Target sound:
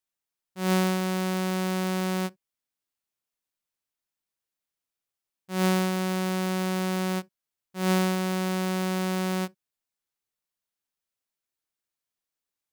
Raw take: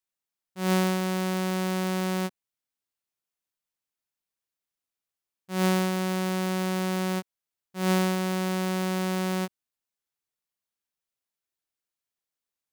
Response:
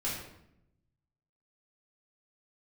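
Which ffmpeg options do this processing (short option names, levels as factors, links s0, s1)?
-filter_complex "[0:a]asplit=2[s0][s1];[1:a]atrim=start_sample=2205,atrim=end_sample=3087,lowshelf=f=240:g=11.5[s2];[s1][s2]afir=irnorm=-1:irlink=0,volume=0.0376[s3];[s0][s3]amix=inputs=2:normalize=0"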